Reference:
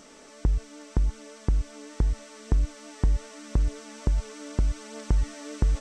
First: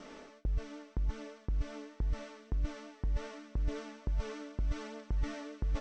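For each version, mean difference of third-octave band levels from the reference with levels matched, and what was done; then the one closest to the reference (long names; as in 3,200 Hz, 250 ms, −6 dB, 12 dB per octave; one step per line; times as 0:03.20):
6.0 dB: reversed playback
downward compressor 8 to 1, threshold −33 dBFS, peak gain reduction 16 dB
reversed playback
high-frequency loss of the air 170 metres
noise gate with hold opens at −46 dBFS
level +2.5 dB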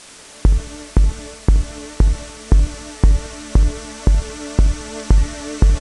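3.5 dB: downward expander −42 dBFS
in parallel at −11 dB: bit-depth reduction 6 bits, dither triangular
on the sum: repeating echo 74 ms, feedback 57%, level −17 dB
downsampling to 22,050 Hz
level +8.5 dB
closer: second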